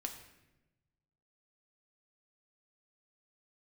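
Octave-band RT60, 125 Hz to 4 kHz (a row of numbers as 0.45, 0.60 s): 1.7, 1.3, 1.1, 0.85, 0.90, 0.75 s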